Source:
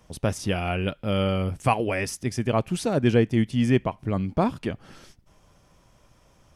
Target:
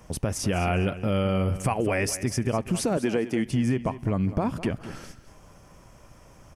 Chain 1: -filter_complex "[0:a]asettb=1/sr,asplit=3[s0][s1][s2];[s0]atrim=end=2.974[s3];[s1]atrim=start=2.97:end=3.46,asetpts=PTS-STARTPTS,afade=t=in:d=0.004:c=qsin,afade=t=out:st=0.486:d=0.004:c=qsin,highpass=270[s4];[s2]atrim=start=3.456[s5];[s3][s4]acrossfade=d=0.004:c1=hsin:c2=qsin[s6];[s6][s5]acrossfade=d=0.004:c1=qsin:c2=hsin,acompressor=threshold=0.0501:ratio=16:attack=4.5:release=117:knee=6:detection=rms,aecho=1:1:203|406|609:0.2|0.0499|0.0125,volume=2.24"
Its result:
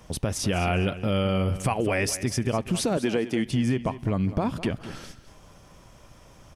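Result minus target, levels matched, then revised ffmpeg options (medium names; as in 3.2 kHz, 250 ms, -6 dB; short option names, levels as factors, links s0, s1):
4 kHz band +3.5 dB
-filter_complex "[0:a]asettb=1/sr,asplit=3[s0][s1][s2];[s0]atrim=end=2.974[s3];[s1]atrim=start=2.97:end=3.46,asetpts=PTS-STARTPTS,afade=t=in:d=0.004:c=qsin,afade=t=out:st=0.486:d=0.004:c=qsin,highpass=270[s4];[s2]atrim=start=3.456[s5];[s3][s4]acrossfade=d=0.004:c1=hsin:c2=qsin[s6];[s6][s5]acrossfade=d=0.004:c1=qsin:c2=hsin,acompressor=threshold=0.0501:ratio=16:attack=4.5:release=117:knee=6:detection=rms,equalizer=f=3700:t=o:w=0.61:g=-8,aecho=1:1:203|406|609:0.2|0.0499|0.0125,volume=2.24"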